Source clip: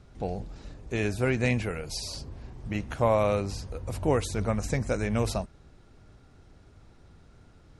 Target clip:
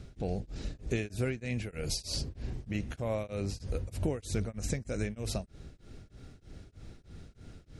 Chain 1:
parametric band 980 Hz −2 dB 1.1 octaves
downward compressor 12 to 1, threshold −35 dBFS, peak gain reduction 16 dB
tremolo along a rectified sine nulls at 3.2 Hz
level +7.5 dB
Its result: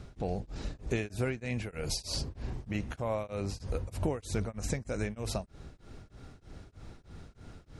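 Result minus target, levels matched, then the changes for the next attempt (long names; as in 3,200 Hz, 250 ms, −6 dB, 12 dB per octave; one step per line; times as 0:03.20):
1,000 Hz band +4.5 dB
change: parametric band 980 Hz −10.5 dB 1.1 octaves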